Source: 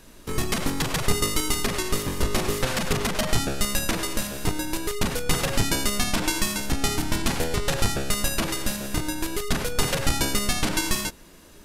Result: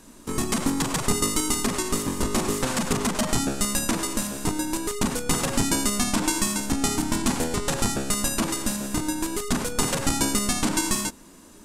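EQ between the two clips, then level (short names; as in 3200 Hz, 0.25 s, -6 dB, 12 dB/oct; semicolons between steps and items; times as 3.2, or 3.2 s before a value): graphic EQ 250/1000/8000 Hz +11/+7/+10 dB; -5.0 dB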